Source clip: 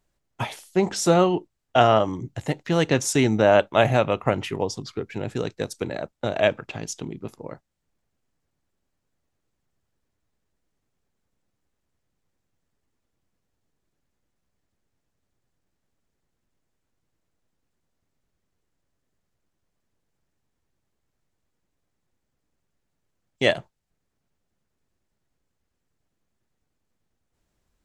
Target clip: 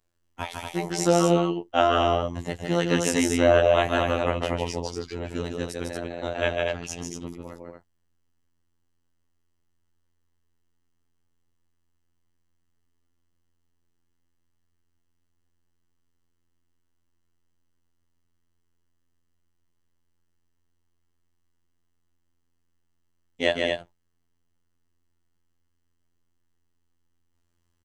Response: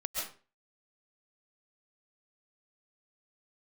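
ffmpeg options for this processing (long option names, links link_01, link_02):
-af "afftfilt=real='hypot(re,im)*cos(PI*b)':imag='0':win_size=2048:overlap=0.75,equalizer=frequency=160:width=2.7:gain=-5,aecho=1:1:151.6|233.2:0.631|0.562"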